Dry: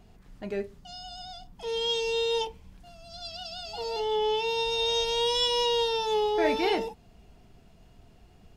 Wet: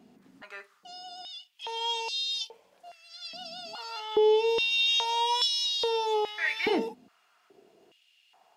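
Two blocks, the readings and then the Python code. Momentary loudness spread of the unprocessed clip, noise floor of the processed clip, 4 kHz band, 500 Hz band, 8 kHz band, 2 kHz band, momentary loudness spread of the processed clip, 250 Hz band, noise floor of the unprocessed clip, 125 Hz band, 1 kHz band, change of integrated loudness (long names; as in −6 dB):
17 LU, −67 dBFS, +1.0 dB, −2.0 dB, 0.0 dB, +3.5 dB, 20 LU, −3.0 dB, −56 dBFS, can't be measured, −0.5 dB, +0.5 dB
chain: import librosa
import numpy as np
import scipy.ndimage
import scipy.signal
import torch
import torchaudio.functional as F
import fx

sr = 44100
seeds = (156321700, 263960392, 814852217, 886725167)

y = fx.diode_clip(x, sr, knee_db=-13.5)
y = fx.filter_held_highpass(y, sr, hz=2.4, low_hz=250.0, high_hz=4300.0)
y = F.gain(torch.from_numpy(y), -2.5).numpy()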